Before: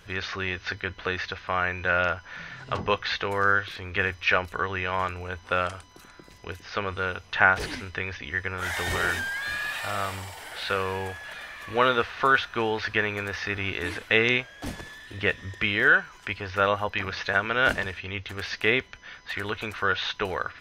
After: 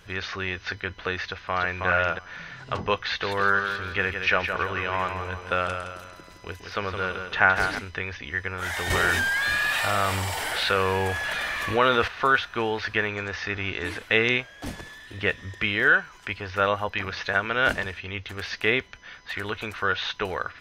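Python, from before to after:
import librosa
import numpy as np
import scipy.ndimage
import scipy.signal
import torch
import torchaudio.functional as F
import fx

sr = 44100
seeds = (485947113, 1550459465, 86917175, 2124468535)

y = fx.echo_throw(x, sr, start_s=1.24, length_s=0.62, ms=320, feedback_pct=10, wet_db=-3.5)
y = fx.echo_feedback(y, sr, ms=166, feedback_pct=44, wet_db=-7, at=(3.04, 7.79))
y = fx.env_flatten(y, sr, amount_pct=50, at=(8.9, 12.08))
y = fx.steep_lowpass(y, sr, hz=7400.0, slope=48, at=(13.08, 13.85))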